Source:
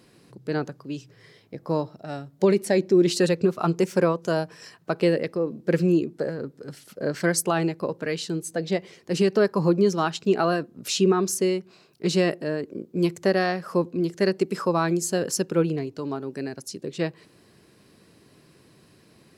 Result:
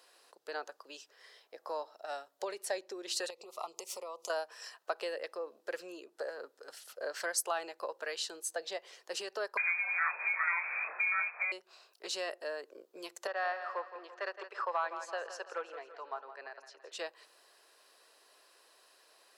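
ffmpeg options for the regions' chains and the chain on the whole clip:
-filter_complex "[0:a]asettb=1/sr,asplit=3[a][b][c];[a]atrim=end=3.304[d];[b]atrim=start=3.3:end=4.3,asetpts=PTS-STARTPTS,afade=t=in:d=0.004:c=qsin,afade=t=out:st=0.996:d=0.004:c=qsin,equalizer=f=11k:w=0.35:g=5.5,acompressor=threshold=-30dB:ratio=8:attack=3.2:release=140:knee=1:detection=peak,asuperstop=centerf=1600:order=4:qfactor=1.9[e];[c]atrim=start=4.296[f];[d][e]acrossfade=d=0.004:c1=hsin:c2=qsin[g];[g][f]acrossfade=d=0.004:c1=qsin:c2=hsin,asettb=1/sr,asplit=3[h][i][j];[h]atrim=end=9.574[k];[i]atrim=start=9.57:end=11.52,asetpts=PTS-STARTPTS,afade=t=in:d=0.004:c=qsin,afade=t=out:st=1.946:d=0.004:c=qsin,aeval=exprs='val(0)+0.5*0.0631*sgn(val(0))':c=same,lowpass=f=2.2k:t=q:w=0.5098,lowpass=f=2.2k:t=q:w=0.6013,lowpass=f=2.2k:t=q:w=0.9,lowpass=f=2.2k:t=q:w=2.563,afreqshift=-2600,asplit=2[l][m];[m]adelay=24,volume=-4dB[n];[l][n]amix=inputs=2:normalize=0,atrim=end_sample=85995[o];[j]atrim=start=11.516[p];[k][o]acrossfade=d=0.004:c1=hsin:c2=qsin[q];[q][p]acrossfade=d=0.004:c1=qsin:c2=hsin,asettb=1/sr,asplit=3[r][s][t];[r]atrim=end=13.274[u];[s]atrim=start=13.27:end=16.92,asetpts=PTS-STARTPTS,afade=t=in:d=0.004:c=qsin,afade=t=out:st=3.646:d=0.004:c=qsin,volume=13.5dB,asoftclip=hard,volume=-13.5dB,highpass=650,lowpass=2.1k,aecho=1:1:167|334|501|668|835:0.251|0.116|0.0532|0.0244|0.0112,atrim=end_sample=160965[v];[t]atrim=start=16.916[w];[u][v]acrossfade=d=0.004:c1=hsin:c2=qsin[x];[x][w]acrossfade=d=0.004:c1=qsin:c2=hsin,acompressor=threshold=-27dB:ratio=2.5,highpass=f=590:w=0.5412,highpass=f=590:w=1.3066,equalizer=f=2.2k:w=5.9:g=-7.5,volume=-2dB"

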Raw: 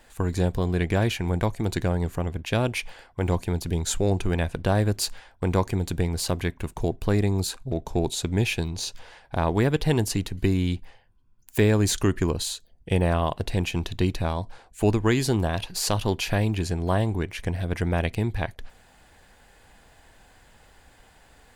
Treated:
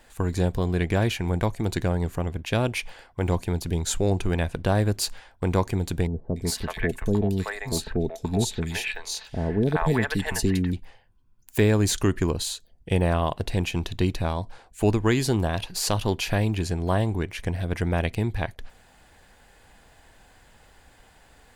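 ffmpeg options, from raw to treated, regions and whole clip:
-filter_complex "[0:a]asettb=1/sr,asplit=3[a][b][c];[a]atrim=end=6.074[d];[b]atrim=start=6.07:end=10.73,asetpts=PTS-STARTPTS,afade=t=in:d=0.004:c=qsin,afade=t=out:st=4.656:d=0.004:c=qsin,equalizer=f=1.8k:t=o:w=0.5:g=8,aecho=1:1:4.6:0.31,atrim=end_sample=205506,acrossover=split=610|2800[e][f][g];[g]adelay=290[h];[f]adelay=380[i];[e][i][h]amix=inputs=3:normalize=0,atrim=end_sample=205506[j];[c]atrim=start=10.726[k];[d][j]acrossfade=d=0.004:c1=hsin:c2=qsin[l];[l][k]acrossfade=d=0.004:c1=qsin:c2=hsin"

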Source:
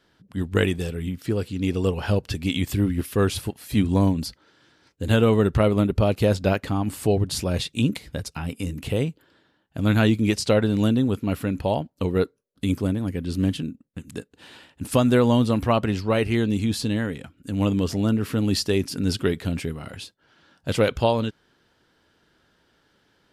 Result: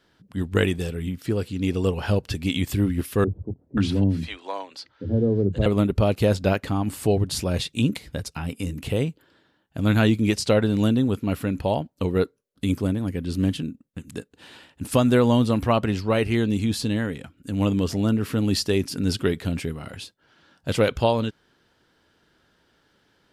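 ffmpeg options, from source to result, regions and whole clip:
-filter_complex "[0:a]asettb=1/sr,asplit=3[a][b][c];[a]atrim=end=3.244[d];[b]atrim=start=3.24:end=5.66,asetpts=PTS-STARTPTS,afade=t=in:d=0.004:c=qsin,afade=t=out:st=2.416:d=0.004:c=qsin,lowpass=4.4k,acrossover=split=160|530[e][f][g];[e]adelay=30[h];[g]adelay=530[i];[h][f][i]amix=inputs=3:normalize=0,atrim=end_sample=106722[j];[c]atrim=start=5.656[k];[d][j]acrossfade=d=0.004:c1=hsin:c2=qsin[l];[l][k]acrossfade=d=0.004:c1=qsin:c2=hsin"

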